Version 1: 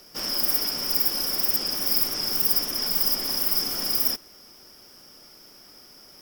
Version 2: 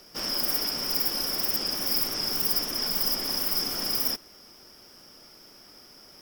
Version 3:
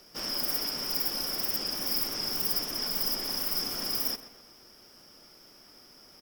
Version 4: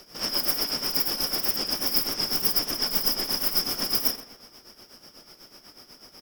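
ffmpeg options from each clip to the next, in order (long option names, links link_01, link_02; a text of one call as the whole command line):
ffmpeg -i in.wav -af "highshelf=frequency=7700:gain=-5" out.wav
ffmpeg -i in.wav -filter_complex "[0:a]asplit=2[link_01][link_02];[link_02]adelay=127,lowpass=frequency=4200:poles=1,volume=-13dB,asplit=2[link_03][link_04];[link_04]adelay=127,lowpass=frequency=4200:poles=1,volume=0.49,asplit=2[link_05][link_06];[link_06]adelay=127,lowpass=frequency=4200:poles=1,volume=0.49,asplit=2[link_07][link_08];[link_08]adelay=127,lowpass=frequency=4200:poles=1,volume=0.49,asplit=2[link_09][link_10];[link_10]adelay=127,lowpass=frequency=4200:poles=1,volume=0.49[link_11];[link_01][link_03][link_05][link_07][link_09][link_11]amix=inputs=6:normalize=0,volume=-3.5dB" out.wav
ffmpeg -i in.wav -af "tremolo=f=8.1:d=0.7,volume=8dB" out.wav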